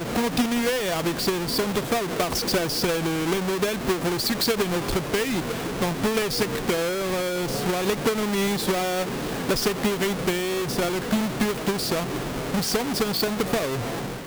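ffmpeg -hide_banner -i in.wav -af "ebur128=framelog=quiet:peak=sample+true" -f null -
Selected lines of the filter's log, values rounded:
Integrated loudness:
  I:         -24.6 LUFS
  Threshold: -34.6 LUFS
Loudness range:
  LRA:         1.1 LU
  Threshold: -44.6 LUFS
  LRA low:   -25.1 LUFS
  LRA high:  -24.0 LUFS
Sample peak:
  Peak:      -14.7 dBFS
True peak:
  Peak:      -12.3 dBFS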